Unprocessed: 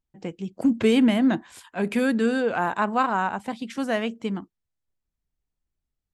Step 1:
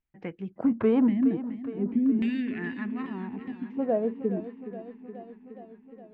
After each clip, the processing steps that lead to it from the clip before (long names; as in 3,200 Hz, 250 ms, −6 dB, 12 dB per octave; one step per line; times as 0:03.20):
gain on a spectral selection 0:01.07–0:03.79, 400–1,700 Hz −24 dB
auto-filter low-pass saw down 0.45 Hz 360–2,400 Hz
feedback echo with a swinging delay time 418 ms, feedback 70%, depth 78 cents, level −13 dB
level −4 dB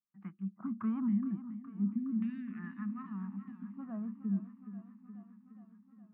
pair of resonant band-passes 490 Hz, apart 2.6 octaves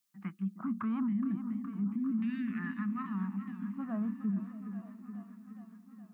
high-shelf EQ 2,000 Hz +11.5 dB
brickwall limiter −32.5 dBFS, peak gain reduction 9.5 dB
echo through a band-pass that steps 308 ms, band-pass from 260 Hz, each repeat 0.7 octaves, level −11 dB
level +5 dB